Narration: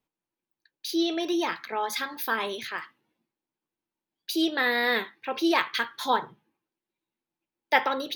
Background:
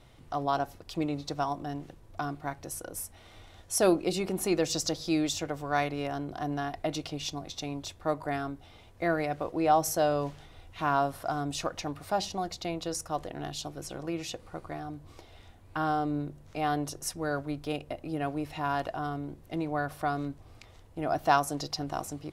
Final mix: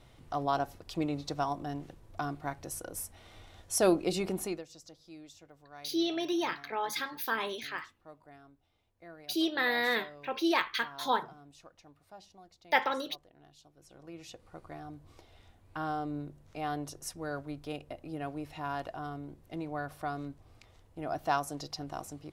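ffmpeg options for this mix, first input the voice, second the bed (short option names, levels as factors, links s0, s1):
-filter_complex "[0:a]adelay=5000,volume=0.596[s0];[1:a]volume=5.62,afade=t=out:st=4.31:d=0.33:silence=0.0891251,afade=t=in:st=13.74:d=1.11:silence=0.149624[s1];[s0][s1]amix=inputs=2:normalize=0"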